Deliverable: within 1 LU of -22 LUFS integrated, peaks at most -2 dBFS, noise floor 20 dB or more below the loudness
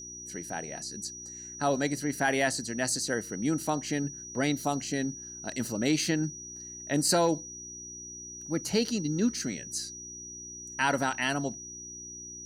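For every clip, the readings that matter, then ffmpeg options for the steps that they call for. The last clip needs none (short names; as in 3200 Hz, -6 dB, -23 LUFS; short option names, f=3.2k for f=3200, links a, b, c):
hum 60 Hz; harmonics up to 360 Hz; hum level -54 dBFS; steady tone 5800 Hz; tone level -41 dBFS; loudness -31.0 LUFS; peak -12.5 dBFS; loudness target -22.0 LUFS
-> -af "bandreject=f=60:t=h:w=4,bandreject=f=120:t=h:w=4,bandreject=f=180:t=h:w=4,bandreject=f=240:t=h:w=4,bandreject=f=300:t=h:w=4,bandreject=f=360:t=h:w=4"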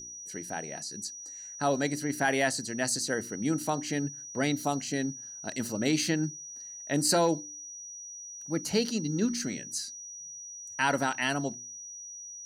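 hum none; steady tone 5800 Hz; tone level -41 dBFS
-> -af "bandreject=f=5.8k:w=30"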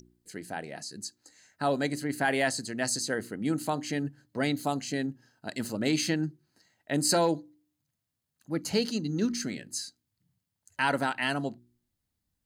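steady tone none; loudness -30.5 LUFS; peak -13.0 dBFS; loudness target -22.0 LUFS
-> -af "volume=8.5dB"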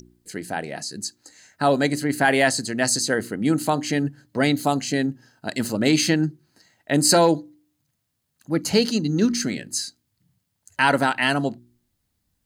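loudness -22.0 LUFS; peak -4.5 dBFS; noise floor -75 dBFS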